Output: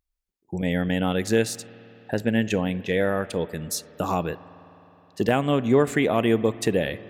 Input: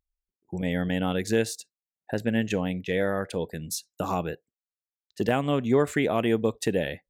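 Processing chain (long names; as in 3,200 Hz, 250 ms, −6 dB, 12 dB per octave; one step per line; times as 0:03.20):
spring reverb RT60 3.7 s, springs 52 ms, chirp 70 ms, DRR 17 dB
level +3 dB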